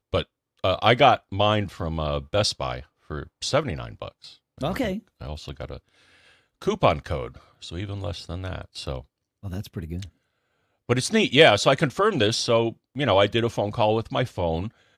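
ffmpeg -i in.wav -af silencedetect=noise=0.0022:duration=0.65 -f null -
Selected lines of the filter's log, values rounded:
silence_start: 10.10
silence_end: 10.89 | silence_duration: 0.79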